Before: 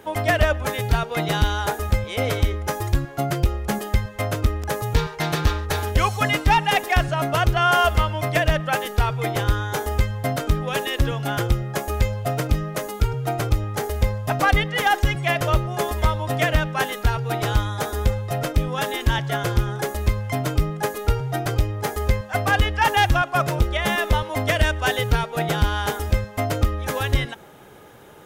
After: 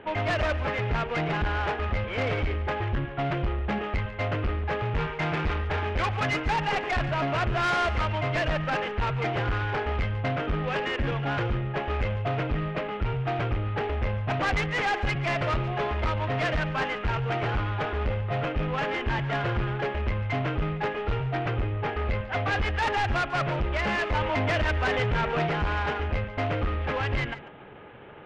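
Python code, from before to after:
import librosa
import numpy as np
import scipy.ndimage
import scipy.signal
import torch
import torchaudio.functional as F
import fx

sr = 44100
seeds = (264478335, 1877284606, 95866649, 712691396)

y = fx.cvsd(x, sr, bps=16000)
y = fx.dynamic_eq(y, sr, hz=2500.0, q=0.81, threshold_db=-40.0, ratio=4.0, max_db=4)
y = 10.0 ** (-22.5 / 20.0) * np.tanh(y / 10.0 ** (-22.5 / 20.0))
y = fx.air_absorb(y, sr, metres=65.0, at=(21.35, 22.65))
y = y + 10.0 ** (-15.5 / 20.0) * np.pad(y, (int(143 * sr / 1000.0), 0))[:len(y)]
y = fx.env_flatten(y, sr, amount_pct=50, at=(24.15, 25.47))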